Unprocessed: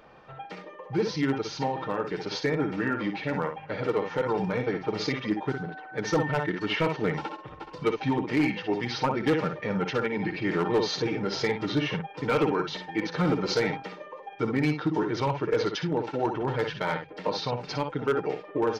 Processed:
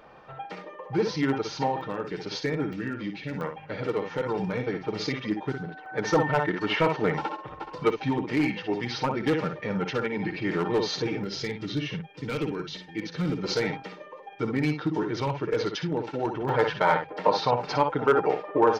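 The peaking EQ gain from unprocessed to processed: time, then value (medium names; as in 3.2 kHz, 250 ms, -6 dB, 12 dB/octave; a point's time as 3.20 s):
peaking EQ 870 Hz 2 oct
+3 dB
from 1.81 s -4.5 dB
from 2.73 s -13 dB
from 3.41 s -3 dB
from 5.86 s +5 dB
from 7.90 s -1.5 dB
from 11.24 s -13 dB
from 13.44 s -2.5 dB
from 16.49 s +9.5 dB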